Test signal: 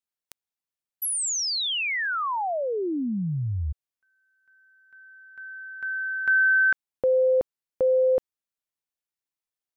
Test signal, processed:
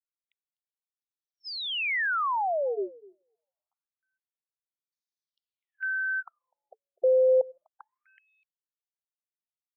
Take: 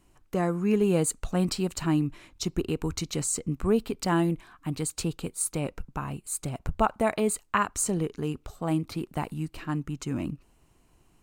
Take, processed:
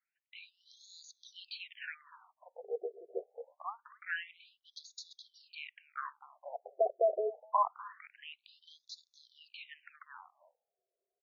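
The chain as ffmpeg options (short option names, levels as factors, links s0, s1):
-filter_complex "[0:a]acrossover=split=2800[s0][s1];[s1]acompressor=threshold=0.00891:ratio=4:attack=1:release=60[s2];[s0][s2]amix=inputs=2:normalize=0,highpass=110,bandreject=f=440:w=13,agate=range=0.178:threshold=0.002:ratio=16:release=234:detection=peak,acrossover=split=180[s3][s4];[s3]acompressor=threshold=0.00562:ratio=6:attack=35:release=23:knee=2.83:detection=peak[s5];[s5][s4]amix=inputs=2:normalize=0,asplit=2[s6][s7];[s7]adelay=250,highpass=300,lowpass=3400,asoftclip=type=hard:threshold=0.106,volume=0.1[s8];[s6][s8]amix=inputs=2:normalize=0,afftfilt=real='re*between(b*sr/1024,510*pow(4900/510,0.5+0.5*sin(2*PI*0.25*pts/sr))/1.41,510*pow(4900/510,0.5+0.5*sin(2*PI*0.25*pts/sr))*1.41)':imag='im*between(b*sr/1024,510*pow(4900/510,0.5+0.5*sin(2*PI*0.25*pts/sr))/1.41,510*pow(4900/510,0.5+0.5*sin(2*PI*0.25*pts/sr))*1.41)':win_size=1024:overlap=0.75"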